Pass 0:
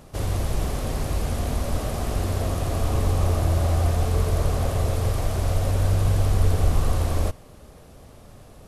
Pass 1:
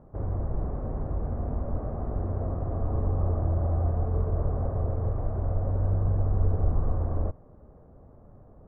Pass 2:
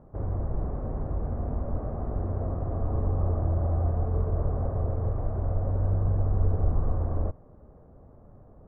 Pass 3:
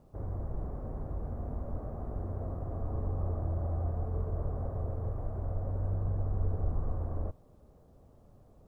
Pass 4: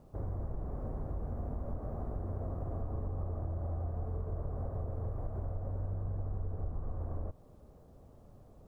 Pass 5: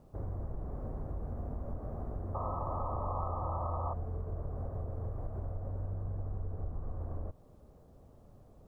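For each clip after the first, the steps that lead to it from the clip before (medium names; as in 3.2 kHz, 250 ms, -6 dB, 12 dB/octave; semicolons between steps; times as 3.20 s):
Bessel low-pass 850 Hz, order 6; trim -4.5 dB
no audible change
word length cut 12-bit, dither none; trim -7 dB
compression, threshold -35 dBFS, peak gain reduction 10.5 dB; trim +2 dB
painted sound noise, 2.34–3.94 s, 490–1300 Hz -38 dBFS; trim -1 dB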